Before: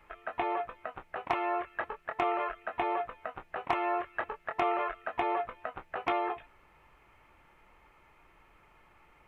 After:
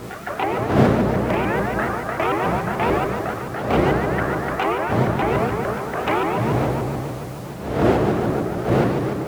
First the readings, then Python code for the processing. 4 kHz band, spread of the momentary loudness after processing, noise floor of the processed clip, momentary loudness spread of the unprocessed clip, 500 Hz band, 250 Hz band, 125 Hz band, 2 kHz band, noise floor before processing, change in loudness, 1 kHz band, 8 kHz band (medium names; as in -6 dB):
+14.0 dB, 8 LU, -32 dBFS, 10 LU, +15.5 dB, +21.0 dB, +35.5 dB, +12.5 dB, -63 dBFS, +13.0 dB, +10.0 dB, no reading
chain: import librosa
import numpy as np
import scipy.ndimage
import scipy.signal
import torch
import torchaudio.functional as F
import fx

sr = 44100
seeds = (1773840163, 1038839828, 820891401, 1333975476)

p1 = fx.dmg_wind(x, sr, seeds[0], corner_hz=550.0, level_db=-31.0)
p2 = fx.rev_fdn(p1, sr, rt60_s=3.2, lf_ratio=1.0, hf_ratio=0.55, size_ms=46.0, drr_db=0.5)
p3 = fx.dmg_noise_colour(p2, sr, seeds[1], colour='pink', level_db=-52.0)
p4 = fx.notch(p3, sr, hz=950.0, q=10.0)
p5 = fx.quant_float(p4, sr, bits=2)
p6 = p4 + (p5 * 10.0 ** (-12.0 / 20.0))
p7 = fx.rider(p6, sr, range_db=3, speed_s=0.5)
p8 = scipy.signal.sosfilt(scipy.signal.butter(2, 74.0, 'highpass', fs=sr, output='sos'), p7)
p9 = fx.doubler(p8, sr, ms=32.0, db=-2)
p10 = fx.vibrato_shape(p9, sr, shape='saw_up', rate_hz=6.9, depth_cents=250.0)
y = p10 * 10.0 ** (2.5 / 20.0)